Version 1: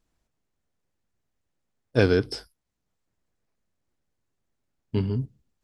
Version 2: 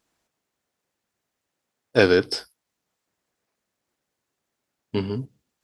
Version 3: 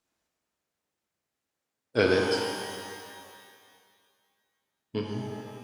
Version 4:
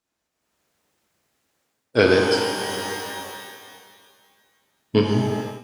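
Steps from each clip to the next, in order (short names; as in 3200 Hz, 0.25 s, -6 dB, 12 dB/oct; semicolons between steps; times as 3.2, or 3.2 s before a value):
HPF 430 Hz 6 dB/oct; gain +7 dB
wow and flutter 86 cents; shimmer reverb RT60 2.1 s, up +12 st, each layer -8 dB, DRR 1 dB; gain -7.5 dB
AGC gain up to 15.5 dB; gain -1 dB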